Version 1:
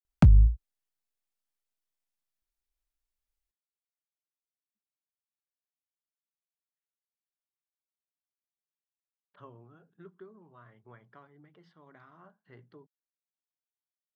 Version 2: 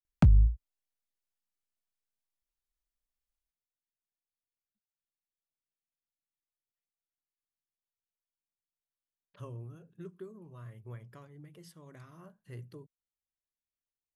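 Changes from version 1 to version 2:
speech: remove cabinet simulation 250–3500 Hz, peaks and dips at 350 Hz -4 dB, 520 Hz -6 dB, 790 Hz +5 dB, 1.4 kHz +4 dB, 2.6 kHz -9 dB; background -3.5 dB

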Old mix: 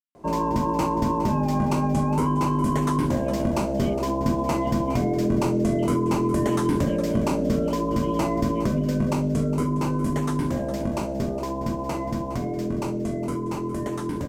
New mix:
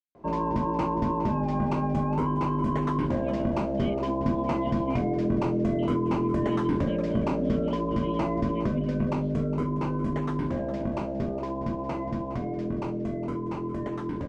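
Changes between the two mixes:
background: add low-pass 2.9 kHz 12 dB/octave; reverb: off

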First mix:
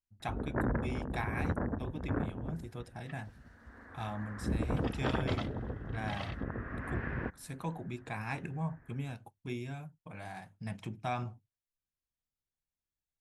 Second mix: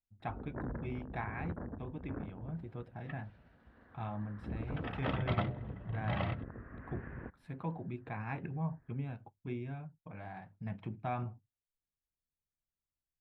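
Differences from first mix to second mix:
first sound -8.0 dB; second sound +7.5 dB; master: add distance through air 490 m

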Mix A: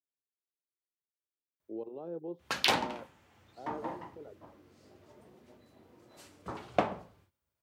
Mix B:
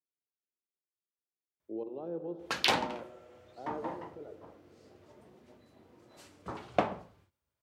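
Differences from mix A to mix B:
background: add treble shelf 12 kHz -7 dB; reverb: on, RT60 2.7 s

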